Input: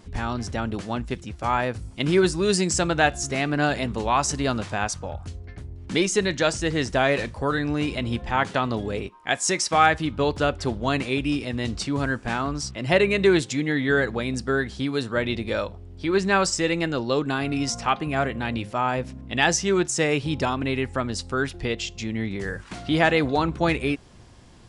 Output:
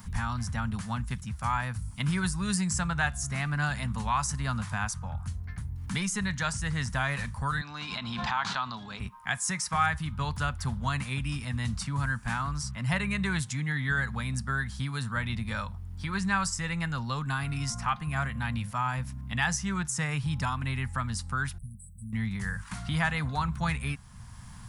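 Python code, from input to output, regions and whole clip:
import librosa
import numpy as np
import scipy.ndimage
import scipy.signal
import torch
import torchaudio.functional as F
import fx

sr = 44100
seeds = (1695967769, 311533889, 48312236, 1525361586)

y = fx.chain(x, sr, fx.cabinet(low_hz=360.0, low_slope=12, high_hz=6000.0, hz=(500.0, 1900.0, 4000.0), db=(-7, -6, 9)),
    fx.pre_swell(db_per_s=31.0), at=(7.61, 9.0))
y = fx.chain(y, sr, fx.brickwall_bandstop(low_hz=230.0, high_hz=7800.0),
    fx.low_shelf(hz=400.0, db=-11.5), at=(21.58, 22.13))
y = fx.curve_eq(y, sr, hz=(130.0, 220.0, 330.0, 600.0, 980.0, 1700.0, 2700.0, 4100.0, 7800.0, 12000.0), db=(0, -5, -27, -19, -3, -4, -10, -9, -3, 9))
y = fx.band_squash(y, sr, depth_pct=40)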